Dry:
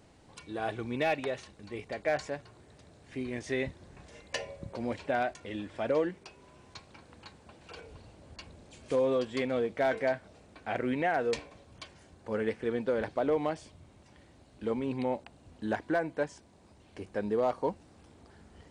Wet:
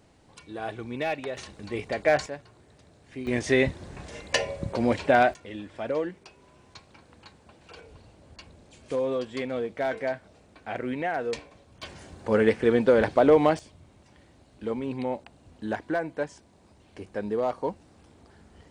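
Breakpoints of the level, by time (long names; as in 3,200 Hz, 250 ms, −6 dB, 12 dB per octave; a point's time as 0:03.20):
0 dB
from 0:01.37 +8 dB
from 0:02.26 0 dB
from 0:03.27 +10.5 dB
from 0:05.34 0 dB
from 0:11.83 +10.5 dB
from 0:13.59 +1.5 dB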